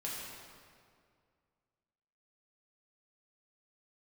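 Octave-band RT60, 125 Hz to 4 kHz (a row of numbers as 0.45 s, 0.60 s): 2.5 s, 2.3 s, 2.2 s, 2.1 s, 1.8 s, 1.5 s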